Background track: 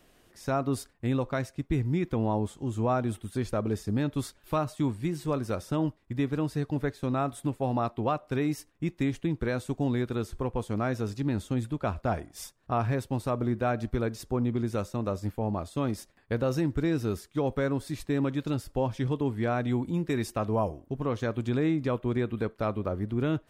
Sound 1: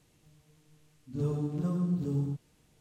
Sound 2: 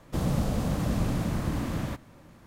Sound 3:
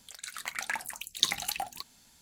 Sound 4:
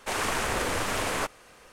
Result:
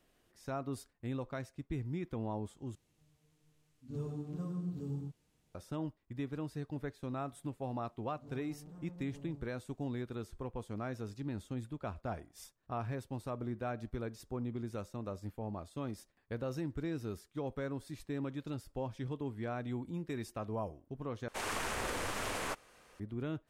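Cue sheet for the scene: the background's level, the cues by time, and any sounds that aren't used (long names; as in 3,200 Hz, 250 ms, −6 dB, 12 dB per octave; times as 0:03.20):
background track −11 dB
0:02.75: overwrite with 1 −9 dB
0:07.08: mix in 1 −15.5 dB + soft clipping −32.5 dBFS
0:21.28: overwrite with 4 −9 dB
not used: 2, 3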